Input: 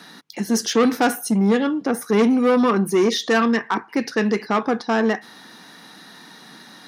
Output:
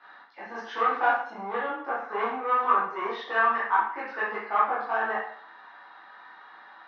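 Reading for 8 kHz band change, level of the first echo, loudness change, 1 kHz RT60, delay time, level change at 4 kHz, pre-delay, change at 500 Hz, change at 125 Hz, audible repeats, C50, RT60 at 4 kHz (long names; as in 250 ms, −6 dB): below −35 dB, no echo audible, −7.0 dB, 0.50 s, no echo audible, −16.5 dB, 6 ms, −12.5 dB, below −25 dB, no echo audible, 2.0 dB, 0.50 s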